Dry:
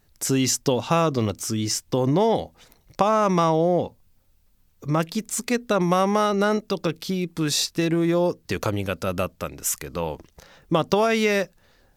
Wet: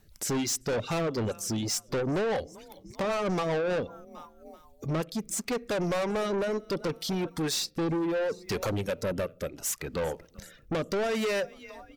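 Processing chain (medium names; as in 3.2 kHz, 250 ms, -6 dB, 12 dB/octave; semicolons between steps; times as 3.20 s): frequency-shifting echo 386 ms, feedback 42%, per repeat +31 Hz, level -21 dB; in parallel at -2.5 dB: compression, threshold -33 dBFS, peak gain reduction 17 dB; on the sum: dynamic bell 510 Hz, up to +6 dB, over -32 dBFS, Q 1.4; on a send at -17.5 dB: reverberation RT60 0.55 s, pre-delay 5 ms; on the sum: rotary cabinet horn 5 Hz, later 0.7 Hz, at 3.85 s; reverb removal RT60 1.2 s; saturation -26 dBFS, distortion -6 dB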